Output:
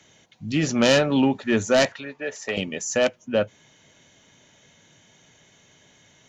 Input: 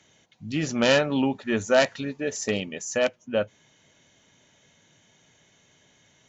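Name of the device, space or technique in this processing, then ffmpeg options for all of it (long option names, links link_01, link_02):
one-band saturation: -filter_complex "[0:a]asettb=1/sr,asplit=3[link_01][link_02][link_03];[link_01]atrim=end=1.924[link_04];[link_02]atrim=start=1.92:end=2.57,asetpts=PTS-STARTPTS,afade=type=in:duration=0.004:curve=qsin,afade=type=out:start_time=0.646:duration=0.004:curve=qsin,acrossover=split=530 3100:gain=0.2 1 0.224[link_05][link_06][link_07];[link_05][link_06][link_07]amix=inputs=3:normalize=0[link_08];[link_03]atrim=start=2.566[link_09];[link_04][link_08]acrossfade=duration=0.004:curve1=hsin:curve2=qsin[link_10];[link_10][link_09]acrossfade=duration=0.004:curve1=qsin:curve2=hsin,acrossover=split=370|3400[link_11][link_12][link_13];[link_12]asoftclip=type=tanh:threshold=-20dB[link_14];[link_11][link_14][link_13]amix=inputs=3:normalize=0,volume=4.5dB"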